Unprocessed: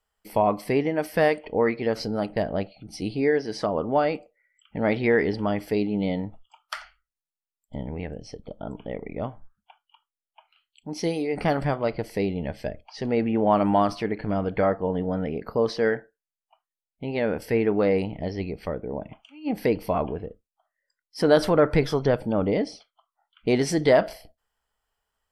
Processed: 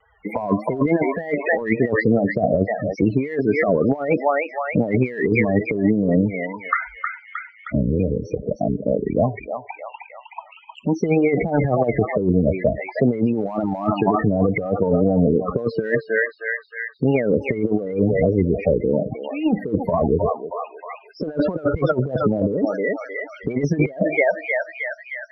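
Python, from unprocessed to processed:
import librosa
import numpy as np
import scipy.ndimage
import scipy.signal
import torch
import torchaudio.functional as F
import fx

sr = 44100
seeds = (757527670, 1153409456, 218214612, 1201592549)

p1 = scipy.signal.sosfilt(scipy.signal.butter(4, 44.0, 'highpass', fs=sr, output='sos'), x)
p2 = p1 + fx.echo_thinned(p1, sr, ms=312, feedback_pct=57, hz=1000.0, wet_db=-6.0, dry=0)
p3 = fx.spec_topn(p2, sr, count=16)
p4 = fx.vibrato(p3, sr, rate_hz=3.4, depth_cents=89.0)
p5 = fx.high_shelf_res(p4, sr, hz=3200.0, db=-12.5, q=3.0)
p6 = np.clip(p5, -10.0 ** (-16.0 / 20.0), 10.0 ** (-16.0 / 20.0))
p7 = p5 + F.gain(torch.from_numpy(p6), -11.0).numpy()
p8 = fx.over_compress(p7, sr, threshold_db=-25.0, ratio=-0.5)
p9 = scipy.signal.sosfilt(scipy.signal.butter(2, 7100.0, 'lowpass', fs=sr, output='sos'), p8)
p10 = fx.band_squash(p9, sr, depth_pct=40)
y = F.gain(torch.from_numpy(p10), 7.0).numpy()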